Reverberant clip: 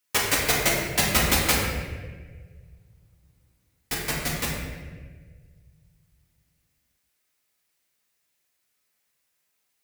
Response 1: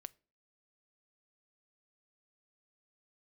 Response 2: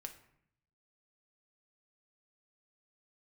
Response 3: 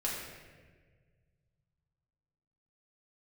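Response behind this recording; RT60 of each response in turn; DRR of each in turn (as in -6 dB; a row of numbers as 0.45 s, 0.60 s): 3; 0.40 s, 0.70 s, 1.5 s; 18.5 dB, 4.5 dB, -5.5 dB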